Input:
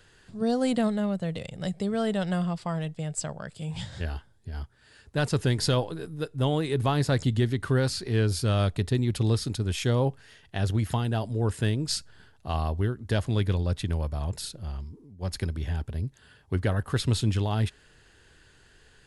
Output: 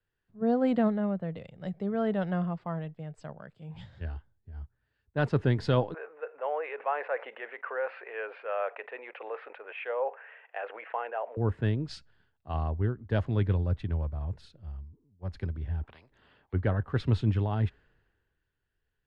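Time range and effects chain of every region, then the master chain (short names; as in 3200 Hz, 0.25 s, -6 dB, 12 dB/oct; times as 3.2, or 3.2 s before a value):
5.94–11.37 Chebyshev band-pass 490–2600 Hz, order 4 + fast leveller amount 50%
15.83–16.53 high shelf 3600 Hz -11 dB + spectral compressor 10:1
whole clip: LPF 2000 Hz 12 dB/oct; three-band expander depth 70%; gain -2.5 dB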